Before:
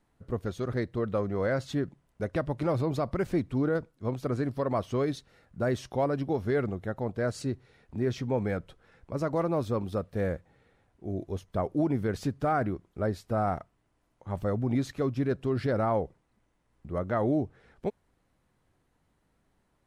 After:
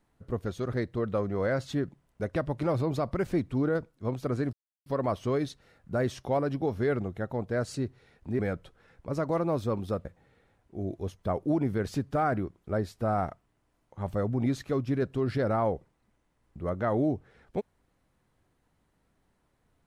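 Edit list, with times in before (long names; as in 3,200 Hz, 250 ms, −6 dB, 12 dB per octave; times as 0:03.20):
0:04.53: splice in silence 0.33 s
0:08.06–0:08.43: remove
0:10.09–0:10.34: remove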